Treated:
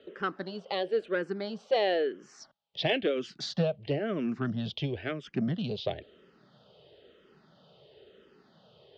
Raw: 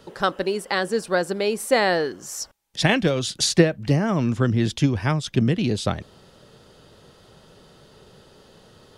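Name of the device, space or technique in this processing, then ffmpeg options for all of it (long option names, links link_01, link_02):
barber-pole phaser into a guitar amplifier: -filter_complex "[0:a]asplit=2[link_01][link_02];[link_02]afreqshift=-0.99[link_03];[link_01][link_03]amix=inputs=2:normalize=1,asoftclip=type=tanh:threshold=-13dB,highpass=100,equalizer=frequency=100:width_type=q:width=4:gain=-8,equalizer=frequency=410:width_type=q:width=4:gain=5,equalizer=frequency=630:width_type=q:width=4:gain=5,equalizer=frequency=970:width_type=q:width=4:gain=-5,equalizer=frequency=3100:width_type=q:width=4:gain=5,lowpass=frequency=4200:width=0.5412,lowpass=frequency=4200:width=1.3066,volume=-6.5dB"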